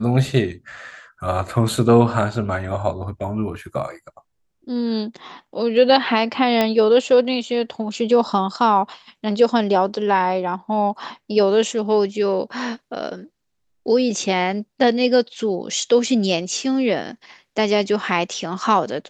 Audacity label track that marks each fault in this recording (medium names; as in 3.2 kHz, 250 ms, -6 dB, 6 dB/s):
6.610000	6.610000	pop -5 dBFS